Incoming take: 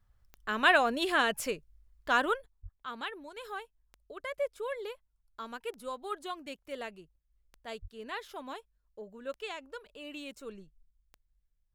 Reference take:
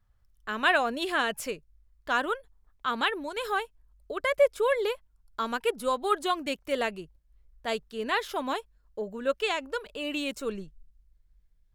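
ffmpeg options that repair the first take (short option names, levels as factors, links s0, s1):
-filter_complex "[0:a]adeclick=t=4,asplit=3[s0][s1][s2];[s0]afade=t=out:st=2.62:d=0.02[s3];[s1]highpass=f=140:w=0.5412,highpass=f=140:w=1.3066,afade=t=in:st=2.62:d=0.02,afade=t=out:st=2.74:d=0.02[s4];[s2]afade=t=in:st=2.74:d=0.02[s5];[s3][s4][s5]amix=inputs=3:normalize=0,asplit=3[s6][s7][s8];[s6]afade=t=out:st=7.81:d=0.02[s9];[s7]highpass=f=140:w=0.5412,highpass=f=140:w=1.3066,afade=t=in:st=7.81:d=0.02,afade=t=out:st=7.93:d=0.02[s10];[s8]afade=t=in:st=7.93:d=0.02[s11];[s9][s10][s11]amix=inputs=3:normalize=0,asetnsamples=n=441:p=0,asendcmd='2.46 volume volume 11.5dB',volume=1"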